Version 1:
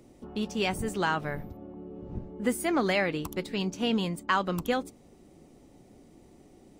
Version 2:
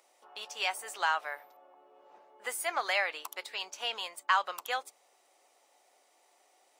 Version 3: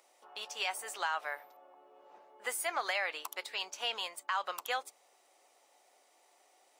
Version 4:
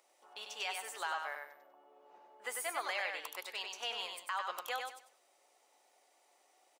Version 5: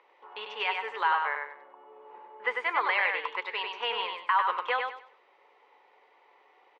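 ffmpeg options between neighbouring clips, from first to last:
-af "highpass=f=700:w=0.5412,highpass=f=700:w=1.3066"
-af "alimiter=limit=-22.5dB:level=0:latency=1:release=89"
-af "aecho=1:1:97|194|291|388:0.596|0.161|0.0434|0.0117,volume=-4.5dB"
-af "highpass=150,equalizer=f=290:t=q:w=4:g=-4,equalizer=f=450:t=q:w=4:g=8,equalizer=f=660:t=q:w=4:g=-10,equalizer=f=980:t=q:w=4:g=10,equalizer=f=2k:t=q:w=4:g=5,lowpass=f=3.1k:w=0.5412,lowpass=f=3.1k:w=1.3066,volume=8.5dB"

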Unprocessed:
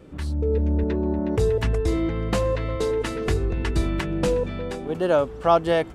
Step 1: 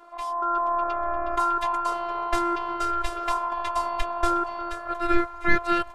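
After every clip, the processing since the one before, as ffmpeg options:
-af "aeval=exprs='val(0)*sin(2*PI*910*n/s)':c=same,asubboost=boost=11:cutoff=58,afftfilt=real='hypot(re,im)*cos(PI*b)':imag='0':win_size=512:overlap=0.75,volume=3.5dB"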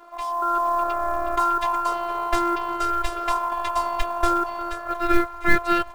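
-af "acrusher=bits=7:mode=log:mix=0:aa=0.000001,volume=2.5dB"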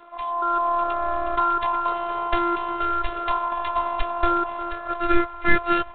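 -ar 8000 -c:a adpcm_g726 -b:a 32k

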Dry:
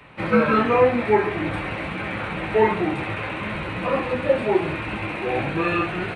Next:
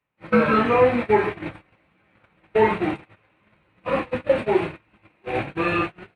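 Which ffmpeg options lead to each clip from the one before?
-af "agate=range=-34dB:threshold=-23dB:ratio=16:detection=peak"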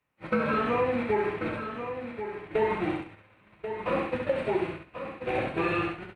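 -filter_complex "[0:a]asplit=2[a][b];[b]aecho=0:1:67|134|201:0.562|0.118|0.0248[c];[a][c]amix=inputs=2:normalize=0,acompressor=threshold=-28dB:ratio=2.5,asplit=2[d][e];[e]aecho=0:1:1087:0.355[f];[d][f]amix=inputs=2:normalize=0"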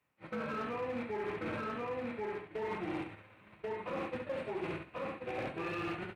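-af "areverse,acompressor=threshold=-34dB:ratio=12,areverse,aeval=exprs='clip(val(0),-1,0.0188)':c=same,highpass=63"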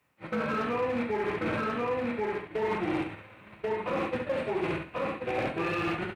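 -filter_complex "[0:a]asplit=2[a][b];[b]adelay=42,volume=-14dB[c];[a][c]amix=inputs=2:normalize=0,volume=8dB"

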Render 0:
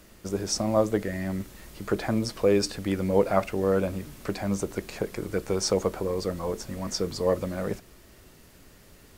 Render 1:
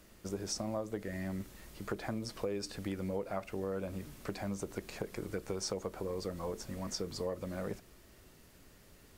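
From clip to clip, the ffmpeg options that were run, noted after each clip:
-af "acompressor=threshold=-27dB:ratio=6,volume=-6.5dB"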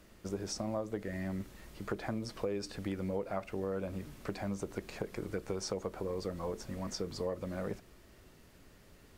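-af "highshelf=f=5.6k:g=-6.5,volume=1dB"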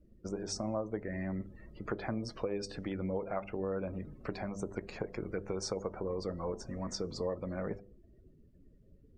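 -af "bandreject=f=99.45:t=h:w=4,bandreject=f=198.9:t=h:w=4,bandreject=f=298.35:t=h:w=4,bandreject=f=397.8:t=h:w=4,bandreject=f=497.25:t=h:w=4,bandreject=f=596.7:t=h:w=4,bandreject=f=696.15:t=h:w=4,bandreject=f=795.6:t=h:w=4,bandreject=f=895.05:t=h:w=4,bandreject=f=994.5:t=h:w=4,afftdn=nr=29:nf=-54,volume=1dB"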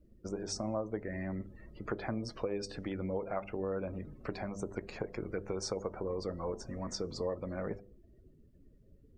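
-af "equalizer=f=180:t=o:w=0.28:g=-2.5"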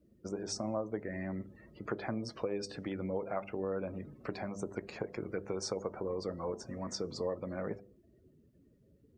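-af "highpass=100"

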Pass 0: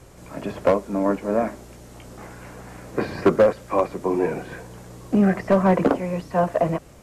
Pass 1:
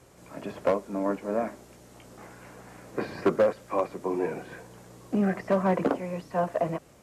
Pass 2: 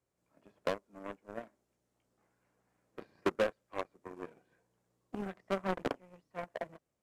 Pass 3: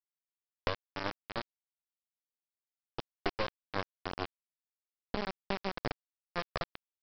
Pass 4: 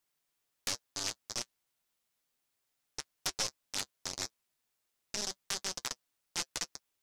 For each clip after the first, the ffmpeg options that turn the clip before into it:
-af "highpass=f=140:p=1,volume=-6dB"
-af "aeval=exprs='0.237*(cos(1*acos(clip(val(0)/0.237,-1,1)))-cos(1*PI/2))+0.075*(cos(3*acos(clip(val(0)/0.237,-1,1)))-cos(3*PI/2))':c=same,volume=-4dB"
-af "acompressor=threshold=-39dB:ratio=4,aresample=11025,acrusher=bits=4:dc=4:mix=0:aa=0.000001,aresample=44100,volume=10.5dB"
-af "aeval=exprs='0.299*sin(PI/2*10*val(0)/0.299)':c=same,flanger=delay=6.6:depth=1.7:regen=-43:speed=0.31:shape=triangular,volume=-6dB"

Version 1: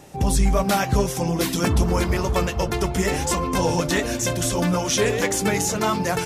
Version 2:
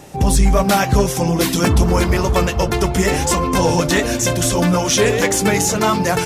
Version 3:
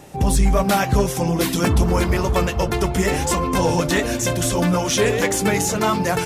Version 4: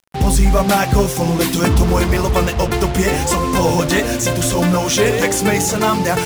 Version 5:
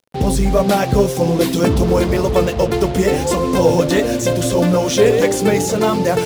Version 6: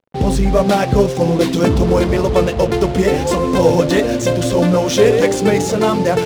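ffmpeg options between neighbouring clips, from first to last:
-af "acontrast=56"
-af "equalizer=f=5.7k:w=1.5:g=-2.5,volume=-3dB"
-af "acrusher=bits=4:mix=0:aa=0.5,volume=3.5dB"
-af "equalizer=f=125:t=o:w=1:g=4,equalizer=f=250:t=o:w=1:g=5,equalizer=f=500:t=o:w=1:g=10,equalizer=f=4k:t=o:w=1:g=4,volume=-6dB"
-af "adynamicsmooth=sensitivity=6:basefreq=1.7k,volume=1dB"

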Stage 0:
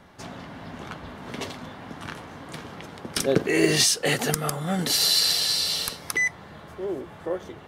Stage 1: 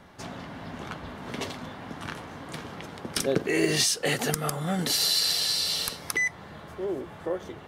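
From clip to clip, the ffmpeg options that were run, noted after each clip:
-af "acompressor=threshold=-27dB:ratio=1.5"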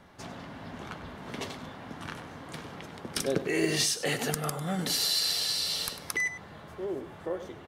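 -filter_complex "[0:a]asplit=2[a][b];[b]adelay=99.13,volume=-12dB,highshelf=f=4k:g=-2.23[c];[a][c]amix=inputs=2:normalize=0,volume=-3.5dB"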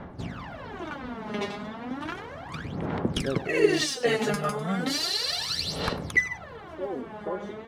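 -af "aemphasis=mode=reproduction:type=75fm,aphaser=in_gain=1:out_gain=1:delay=4.9:decay=0.78:speed=0.34:type=sinusoidal,volume=2dB"

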